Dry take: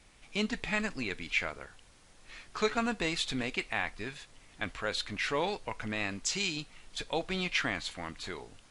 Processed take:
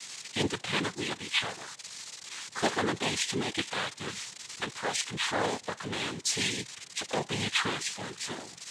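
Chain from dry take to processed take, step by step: zero-crossing glitches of -30 dBFS; noise-vocoded speech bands 6; trim +2 dB

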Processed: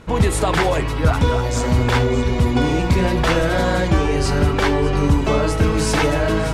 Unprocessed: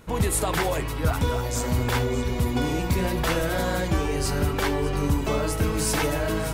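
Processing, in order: distance through air 65 m; trim +7.5 dB

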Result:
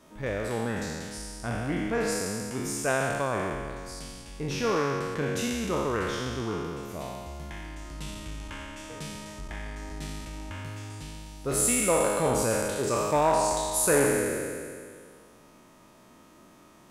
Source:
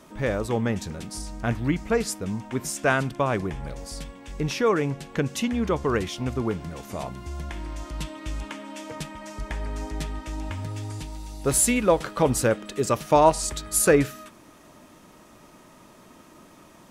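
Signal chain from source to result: spectral sustain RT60 2.09 s; transformer saturation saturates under 740 Hz; trim -7.5 dB

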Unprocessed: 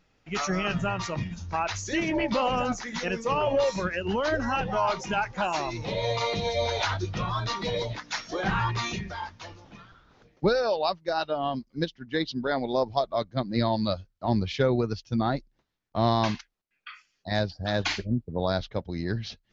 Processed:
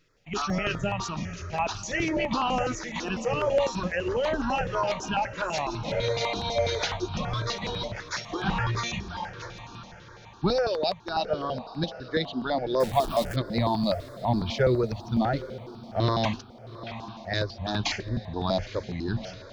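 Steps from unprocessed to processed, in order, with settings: 12.80–13.36 s: jump at every zero crossing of -28.5 dBFS; hum notches 50/100 Hz; on a send: echo that smears into a reverb 830 ms, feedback 43%, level -14.5 dB; on the sum: stepped phaser 12 Hz 210–2000 Hz; trim +3 dB

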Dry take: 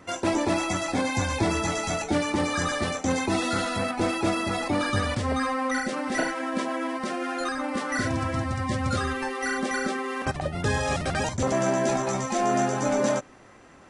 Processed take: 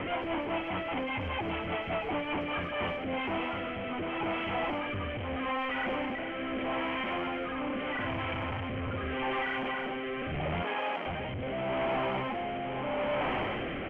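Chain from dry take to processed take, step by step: one-bit comparator; 10.62–11.06 s: high-pass 250 Hz 24 dB/octave; rotary cabinet horn 5 Hz, later 0.8 Hz, at 2.40 s; rippled Chebyshev low-pass 3.2 kHz, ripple 6 dB; speakerphone echo 100 ms, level -20 dB

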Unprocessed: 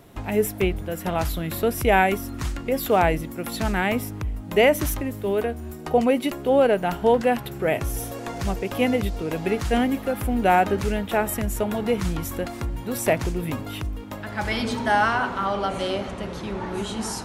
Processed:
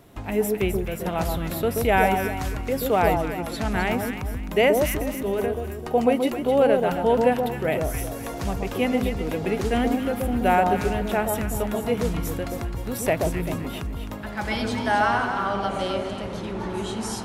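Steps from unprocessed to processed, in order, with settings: 3.01–3.76 s: Bessel low-pass 9.3 kHz, order 2; echo whose repeats swap between lows and highs 130 ms, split 1.1 kHz, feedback 57%, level -3 dB; trim -2 dB

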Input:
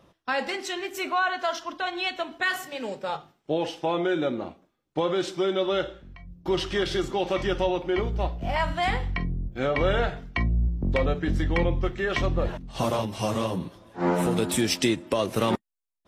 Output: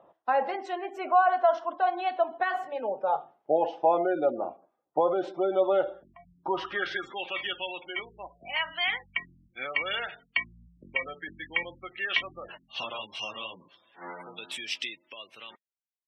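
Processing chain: fade out at the end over 3.25 s; spectral gate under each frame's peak -25 dB strong; band-pass sweep 720 Hz -> 2.8 kHz, 6.33–7.37 s; trim +7.5 dB

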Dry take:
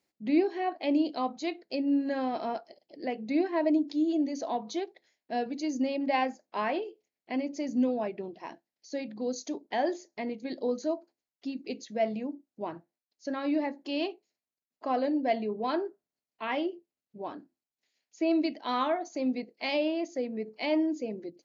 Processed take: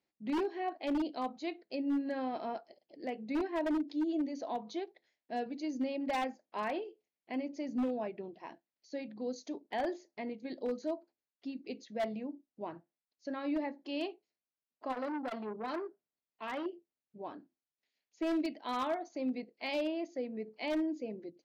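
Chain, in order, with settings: low-pass 4.7 kHz 12 dB/octave; wavefolder -21.5 dBFS; 14.92–16.66 s: transformer saturation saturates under 770 Hz; trim -5.5 dB

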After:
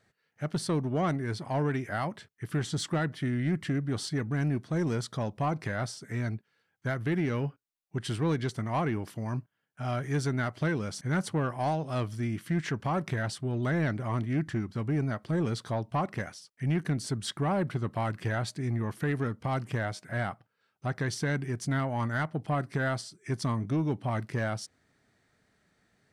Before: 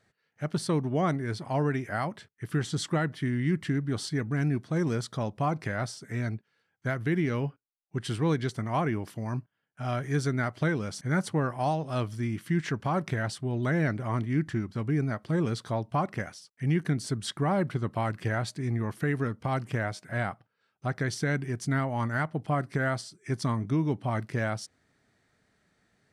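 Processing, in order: saturation -20.5 dBFS, distortion -19 dB

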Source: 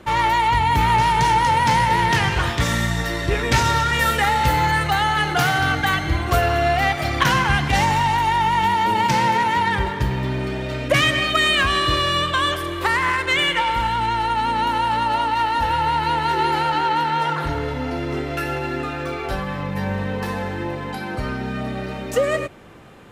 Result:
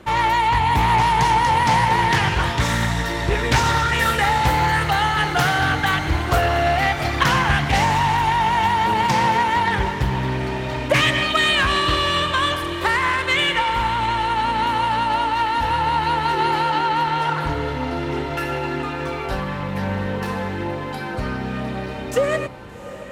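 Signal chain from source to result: echo that smears into a reverb 756 ms, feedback 71%, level -15.5 dB; loudspeaker Doppler distortion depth 0.29 ms

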